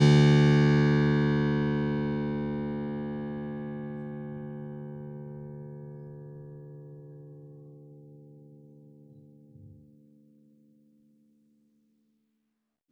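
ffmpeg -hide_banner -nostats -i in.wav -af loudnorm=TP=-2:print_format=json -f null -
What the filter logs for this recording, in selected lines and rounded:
"input_i" : "-27.1",
"input_tp" : "-9.8",
"input_lra" : "24.0",
"input_thresh" : "-41.5",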